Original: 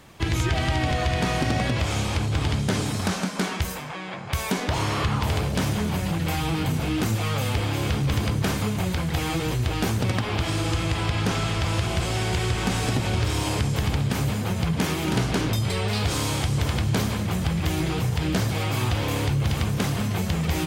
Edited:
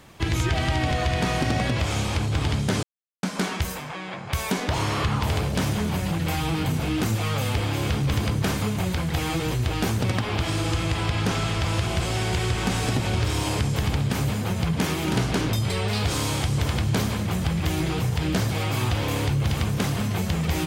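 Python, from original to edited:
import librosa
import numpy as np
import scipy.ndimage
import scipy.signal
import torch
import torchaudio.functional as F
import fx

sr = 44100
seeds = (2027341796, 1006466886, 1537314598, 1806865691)

y = fx.edit(x, sr, fx.silence(start_s=2.83, length_s=0.4), tone=tone)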